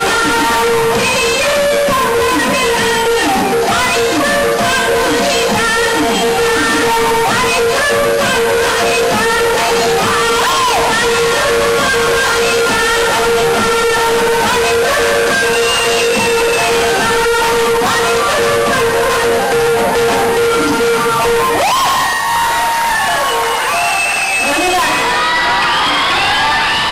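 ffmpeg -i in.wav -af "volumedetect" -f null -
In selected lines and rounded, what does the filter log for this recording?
mean_volume: -12.3 dB
max_volume: -9.9 dB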